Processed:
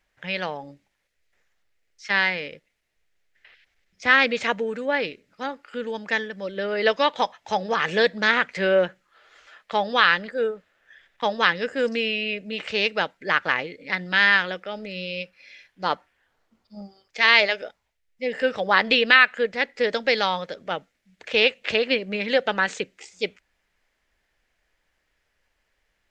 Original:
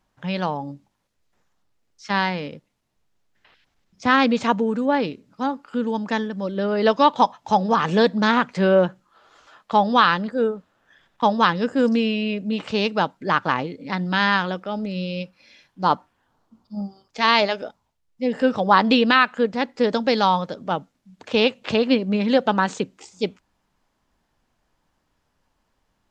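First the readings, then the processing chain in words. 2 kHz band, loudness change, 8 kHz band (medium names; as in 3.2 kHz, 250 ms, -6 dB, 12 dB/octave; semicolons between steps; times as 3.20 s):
+4.5 dB, -1.5 dB, no reading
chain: graphic EQ 125/250/500/1000/2000 Hz -9/-9/+3/-9/+11 dB; trim -1.5 dB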